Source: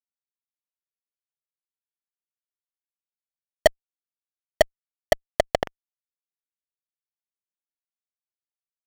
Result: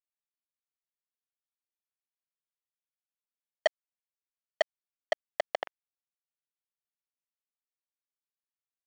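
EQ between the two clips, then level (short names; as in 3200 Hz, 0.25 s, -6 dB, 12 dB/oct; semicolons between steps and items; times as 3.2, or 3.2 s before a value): BPF 690–4000 Hz; -6.0 dB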